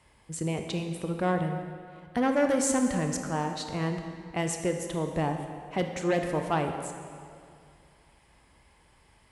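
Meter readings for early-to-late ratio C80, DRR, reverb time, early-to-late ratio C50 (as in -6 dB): 6.5 dB, 4.5 dB, 2.3 s, 6.0 dB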